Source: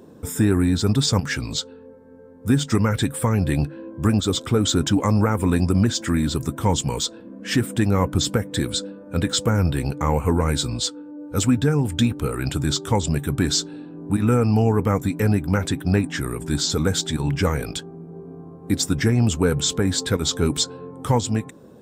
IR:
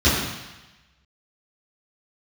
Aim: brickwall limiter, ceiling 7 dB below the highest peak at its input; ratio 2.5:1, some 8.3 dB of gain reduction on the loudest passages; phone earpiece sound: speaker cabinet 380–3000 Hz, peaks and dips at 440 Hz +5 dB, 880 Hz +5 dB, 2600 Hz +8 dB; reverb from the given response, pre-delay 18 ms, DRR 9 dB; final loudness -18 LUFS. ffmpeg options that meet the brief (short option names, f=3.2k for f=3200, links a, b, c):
-filter_complex "[0:a]acompressor=threshold=-27dB:ratio=2.5,alimiter=limit=-20dB:level=0:latency=1,asplit=2[a][b];[1:a]atrim=start_sample=2205,adelay=18[c];[b][c]afir=irnorm=-1:irlink=0,volume=-29.5dB[d];[a][d]amix=inputs=2:normalize=0,highpass=380,equalizer=f=440:t=q:w=4:g=5,equalizer=f=880:t=q:w=4:g=5,equalizer=f=2.6k:t=q:w=4:g=8,lowpass=f=3k:w=0.5412,lowpass=f=3k:w=1.3066,volume=17dB"